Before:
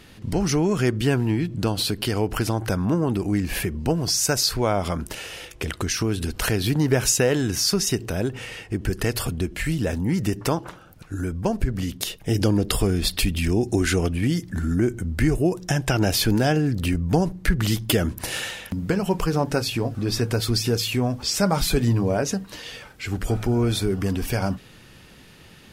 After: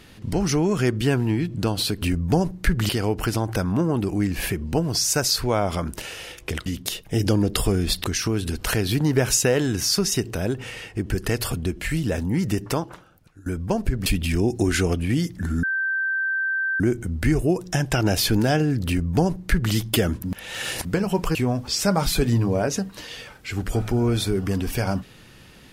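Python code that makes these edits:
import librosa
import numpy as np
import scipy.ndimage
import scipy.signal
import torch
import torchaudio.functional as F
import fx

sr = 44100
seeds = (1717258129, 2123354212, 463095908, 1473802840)

y = fx.edit(x, sr, fx.fade_out_to(start_s=10.35, length_s=0.86, floor_db=-21.5),
    fx.move(start_s=11.81, length_s=1.38, to_s=5.79),
    fx.insert_tone(at_s=14.76, length_s=1.17, hz=1560.0, db=-21.0),
    fx.duplicate(start_s=16.83, length_s=0.87, to_s=2.02),
    fx.reverse_span(start_s=18.2, length_s=0.61),
    fx.cut(start_s=19.31, length_s=1.59), tone=tone)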